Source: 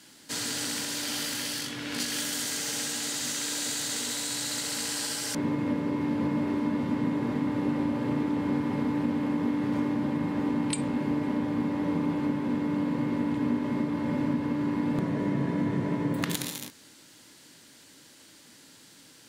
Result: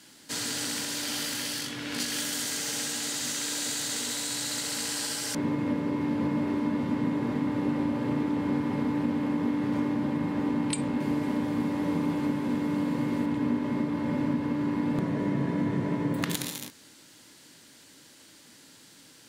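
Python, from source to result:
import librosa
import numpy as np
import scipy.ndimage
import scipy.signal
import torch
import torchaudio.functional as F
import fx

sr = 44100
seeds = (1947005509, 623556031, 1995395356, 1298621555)

y = fx.high_shelf(x, sr, hz=5100.0, db=8.5, at=(11.0, 13.26))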